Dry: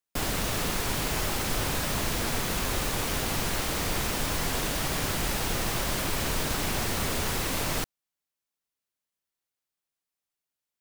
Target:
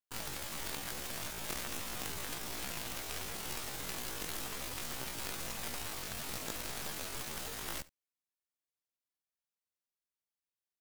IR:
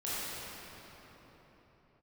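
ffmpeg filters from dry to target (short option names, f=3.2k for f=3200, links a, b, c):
-af "aeval=exprs='0.178*(cos(1*acos(clip(val(0)/0.178,-1,1)))-cos(1*PI/2))+0.02*(cos(2*acos(clip(val(0)/0.178,-1,1)))-cos(2*PI/2))+0.0708*(cos(3*acos(clip(val(0)/0.178,-1,1)))-cos(3*PI/2))+0.0126*(cos(7*acos(clip(val(0)/0.178,-1,1)))-cos(7*PI/2))+0.01*(cos(8*acos(clip(val(0)/0.178,-1,1)))-cos(8*PI/2))':c=same,asetrate=76340,aresample=44100,atempo=0.577676,aecho=1:1:71:0.0891,volume=-3.5dB"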